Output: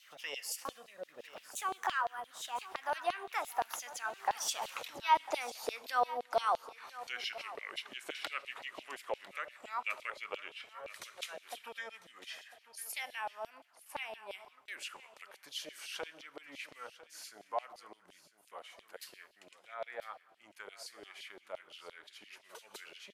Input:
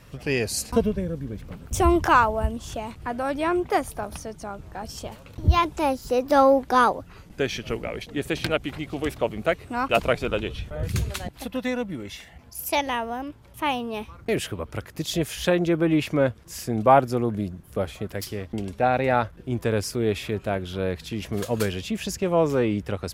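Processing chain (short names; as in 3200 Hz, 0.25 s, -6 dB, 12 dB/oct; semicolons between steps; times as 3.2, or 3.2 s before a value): Doppler pass-by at 4.7, 35 m/s, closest 12 m; compressor 2.5:1, threshold -56 dBFS, peak gain reduction 26.5 dB; Schroeder reverb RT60 1.1 s, combs from 25 ms, DRR 16 dB; LFO high-pass saw down 5.8 Hz 580–3900 Hz; on a send: echo 1 s -16 dB; on the sum: gain +16.5 dB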